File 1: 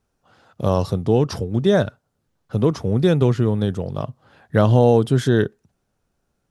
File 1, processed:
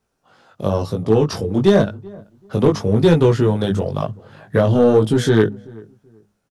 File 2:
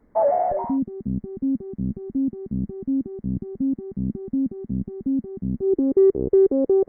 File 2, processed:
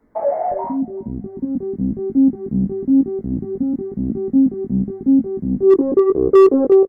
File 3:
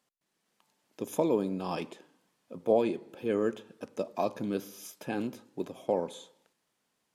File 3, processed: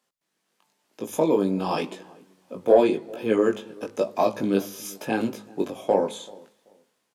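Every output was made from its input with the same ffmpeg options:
-filter_complex "[0:a]lowshelf=f=120:g=-8.5,bandreject=f=103.1:t=h:w=4,bandreject=f=206.2:t=h:w=4,acrossover=split=470[s0][s1];[s1]alimiter=limit=0.133:level=0:latency=1:release=476[s2];[s0][s2]amix=inputs=2:normalize=0,dynaudnorm=f=830:g=3:m=2.24,asoftclip=type=tanh:threshold=0.562,flanger=delay=18:depth=2.8:speed=0.95,volume=3.55,asoftclip=hard,volume=0.282,asplit=2[s3][s4];[s4]adelay=384,lowpass=f=960:p=1,volume=0.075,asplit=2[s5][s6];[s6]adelay=384,lowpass=f=960:p=1,volume=0.25[s7];[s3][s5][s7]amix=inputs=3:normalize=0,volume=1.88"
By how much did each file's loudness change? +2.0 LU, +6.5 LU, +8.0 LU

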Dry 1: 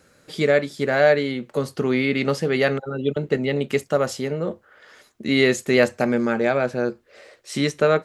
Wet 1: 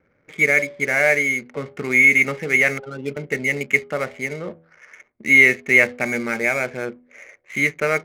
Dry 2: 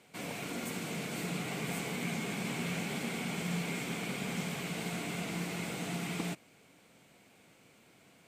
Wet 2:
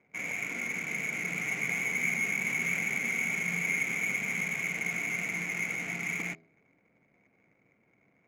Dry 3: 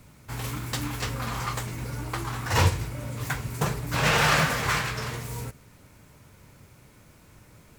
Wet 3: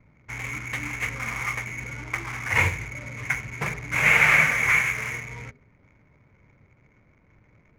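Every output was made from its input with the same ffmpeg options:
-af "lowpass=f=2200:t=q:w=12,bandreject=f=82.07:t=h:w=4,bandreject=f=164.14:t=h:w=4,bandreject=f=246.21:t=h:w=4,bandreject=f=328.28:t=h:w=4,bandreject=f=410.35:t=h:w=4,bandreject=f=492.42:t=h:w=4,bandreject=f=574.49:t=h:w=4,bandreject=f=656.56:t=h:w=4,bandreject=f=738.63:t=h:w=4,bandreject=f=820.7:t=h:w=4,adynamicsmooth=sensitivity=7:basefreq=640,volume=0.562"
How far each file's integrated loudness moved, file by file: +4.5 LU, +6.5 LU, +4.5 LU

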